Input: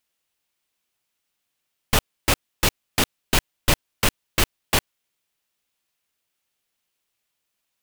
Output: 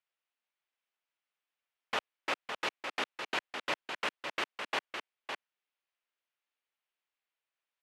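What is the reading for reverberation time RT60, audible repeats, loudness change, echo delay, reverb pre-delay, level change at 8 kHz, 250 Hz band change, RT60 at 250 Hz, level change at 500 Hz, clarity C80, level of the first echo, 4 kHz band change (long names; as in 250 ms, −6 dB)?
no reverb audible, 1, −13.5 dB, 559 ms, no reverb audible, −24.0 dB, −18.5 dB, no reverb audible, −11.5 dB, no reverb audible, −6.5 dB, −13.0 dB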